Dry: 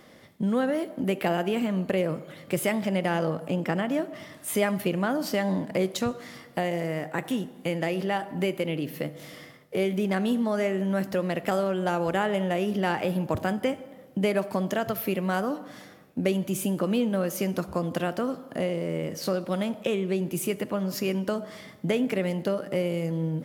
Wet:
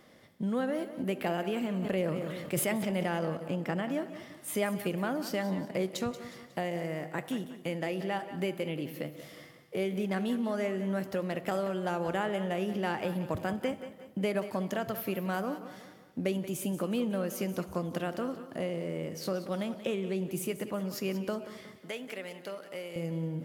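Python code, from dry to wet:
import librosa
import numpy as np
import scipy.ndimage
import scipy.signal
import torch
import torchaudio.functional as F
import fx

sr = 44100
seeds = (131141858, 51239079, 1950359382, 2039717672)

y = fx.highpass(x, sr, hz=1100.0, slope=6, at=(21.78, 22.96))
y = fx.echo_feedback(y, sr, ms=182, feedback_pct=44, wet_db=-13)
y = fx.sustainer(y, sr, db_per_s=28.0, at=(1.81, 3.06), fade=0.02)
y = F.gain(torch.from_numpy(y), -6.0).numpy()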